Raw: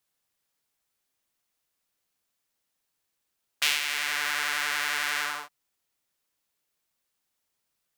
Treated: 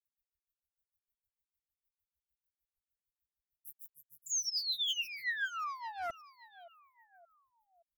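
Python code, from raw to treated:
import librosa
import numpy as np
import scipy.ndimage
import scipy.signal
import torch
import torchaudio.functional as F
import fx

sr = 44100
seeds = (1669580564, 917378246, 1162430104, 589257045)

p1 = fx.granulator(x, sr, seeds[0], grain_ms=98.0, per_s=6.6, spray_ms=100.0, spread_st=0)
p2 = scipy.signal.sosfilt(scipy.signal.cheby2(4, 70, [360.0, 4400.0], 'bandstop', fs=sr, output='sos'), p1)
p3 = fx.spec_paint(p2, sr, seeds[1], shape='fall', start_s=4.26, length_s=1.85, low_hz=660.0, high_hz=7300.0, level_db=-38.0)
p4 = fx.phaser_stages(p3, sr, stages=8, low_hz=620.0, high_hz=3200.0, hz=2.0, feedback_pct=40)
p5 = p4 + fx.echo_feedback(p4, sr, ms=572, feedback_pct=42, wet_db=-18.5, dry=0)
p6 = fx.doppler_dist(p5, sr, depth_ms=0.38)
y = F.gain(torch.from_numpy(p6), 4.5).numpy()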